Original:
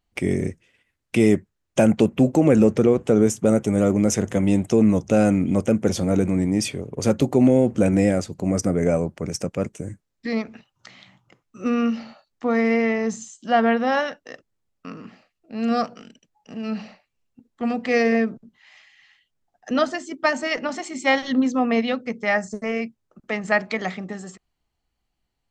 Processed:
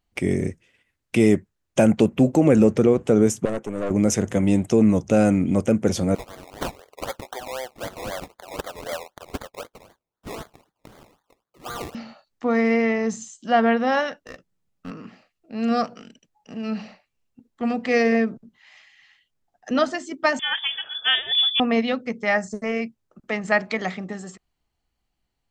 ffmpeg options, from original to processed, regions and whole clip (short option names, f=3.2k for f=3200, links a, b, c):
-filter_complex "[0:a]asettb=1/sr,asplit=3[a][b][c];[a]atrim=end=3.454[d];[b]atrim=start=3.45:end=3.91,asetpts=PTS-STARTPTS,afade=t=in:d=0.004:c=qsin,afade=t=out:st=0.456:d=0.004:c=qsin,highpass=300,highshelf=f=2.6k:g=-9.5,aeval=exprs='(tanh(12.6*val(0)+0.65)-tanh(0.65))/12.6':c=same[e];[c]atrim=start=3.906[f];[d][e]acrossfade=d=0.004:c1=hsin:c2=qsin[g];[g][f]acrossfade=d=0.004:c1=qsin:c2=hsin,asettb=1/sr,asplit=3[h][i][j];[h]atrim=end=6.154[k];[i]atrim=start=6.15:end=11.95,asetpts=PTS-STARTPTS,afade=t=in:d=0.004:c=qsin,afade=t=out:st=5.796:d=0.004:c=qsin,highpass=f=730:w=0.5412,highpass=f=730:w=1.3066,acrusher=samples=23:mix=1:aa=0.000001:lfo=1:lforange=13.8:lforate=3.9[l];[j]atrim=start=11.946[m];[k][l]acrossfade=d=0.004:c1=hsin:c2=qsin[n];[n][m]acrossfade=d=0.004:c1=qsin:c2=hsin,asettb=1/sr,asplit=3[o][p][q];[o]atrim=end=14.254[r];[p]atrim=start=14.25:end=14.91,asetpts=PTS-STARTPTS,afade=t=in:d=0.004:c=qsin,afade=t=out:st=0.656:d=0.004:c=qsin,aeval=exprs='clip(val(0),-1,0.0133)':c=same,equalizer=f=170:w=2.3:g=9.5,asplit=2[s][t];[t]adelay=15,volume=-13dB[u];[s][u]amix=inputs=2:normalize=0,atrim=end_sample=29106[v];[q]atrim=start=14.906[w];[r][v]acrossfade=d=0.004:c1=hsin:c2=qsin[x];[x][w]acrossfade=d=0.004:c1=qsin:c2=hsin,asettb=1/sr,asplit=3[y][z][aa];[y]atrim=end=20.394[ab];[z]atrim=start=20.39:end=21.6,asetpts=PTS-STARTPTS,afade=t=in:d=0.004:c=qsin,afade=t=out:st=1.206:d=0.004:c=qsin,asoftclip=type=hard:threshold=-15.5dB,lowpass=f=3.1k:t=q:w=0.5098,lowpass=f=3.1k:t=q:w=0.6013,lowpass=f=3.1k:t=q:w=0.9,lowpass=f=3.1k:t=q:w=2.563,afreqshift=-3700[ac];[aa]atrim=start=21.596[ad];[ab][ac]acrossfade=d=0.004:c1=hsin:c2=qsin[ae];[ae][ad]acrossfade=d=0.004:c1=qsin:c2=hsin"